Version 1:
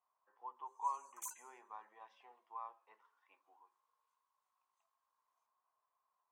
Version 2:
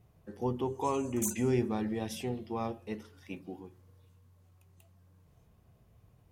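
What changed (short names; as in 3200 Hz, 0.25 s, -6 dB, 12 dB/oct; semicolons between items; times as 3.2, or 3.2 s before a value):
speech: remove tape spacing loss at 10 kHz 44 dB; master: remove ladder high-pass 950 Hz, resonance 75%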